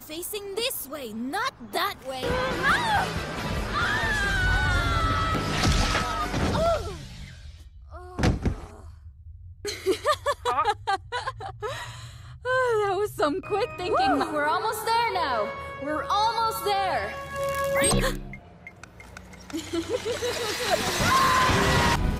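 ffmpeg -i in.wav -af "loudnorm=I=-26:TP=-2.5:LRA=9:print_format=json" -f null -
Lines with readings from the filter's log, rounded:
"input_i" : "-25.3",
"input_tp" : "-11.4",
"input_lra" : "5.4",
"input_thresh" : "-36.0",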